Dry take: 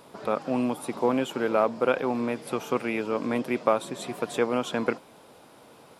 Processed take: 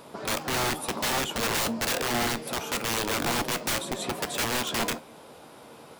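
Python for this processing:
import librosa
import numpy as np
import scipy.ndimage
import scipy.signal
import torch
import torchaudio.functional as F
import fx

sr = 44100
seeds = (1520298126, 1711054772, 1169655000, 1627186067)

y = (np.mod(10.0 ** (25.5 / 20.0) * x + 1.0, 2.0) - 1.0) / 10.0 ** (25.5 / 20.0)
y = fx.comb_fb(y, sr, f0_hz=77.0, decay_s=0.19, harmonics='all', damping=0.0, mix_pct=50)
y = F.gain(torch.from_numpy(y), 7.0).numpy()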